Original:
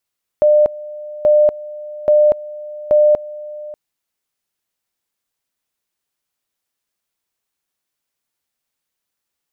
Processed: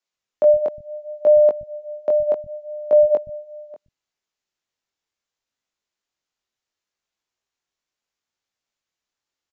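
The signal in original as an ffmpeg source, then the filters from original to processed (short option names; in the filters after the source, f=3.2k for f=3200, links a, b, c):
-f lavfi -i "aevalsrc='pow(10,(-7.5-19.5*gte(mod(t,0.83),0.24))/20)*sin(2*PI*600*t)':d=3.32:s=44100"
-filter_complex "[0:a]flanger=delay=18:depth=4.8:speed=0.7,acrossover=split=170[a][b];[a]adelay=120[c];[c][b]amix=inputs=2:normalize=0,aresample=16000,aresample=44100"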